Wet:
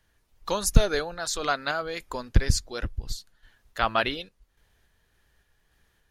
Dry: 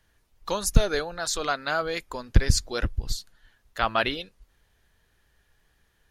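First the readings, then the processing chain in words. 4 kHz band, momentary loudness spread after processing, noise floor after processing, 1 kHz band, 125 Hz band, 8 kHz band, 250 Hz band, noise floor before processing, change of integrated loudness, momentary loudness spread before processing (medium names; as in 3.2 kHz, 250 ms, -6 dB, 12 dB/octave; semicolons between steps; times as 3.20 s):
-1.0 dB, 15 LU, -69 dBFS, 0.0 dB, -1.0 dB, -1.0 dB, -0.5 dB, -68 dBFS, -0.5 dB, 12 LU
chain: random-step tremolo; trim +1.5 dB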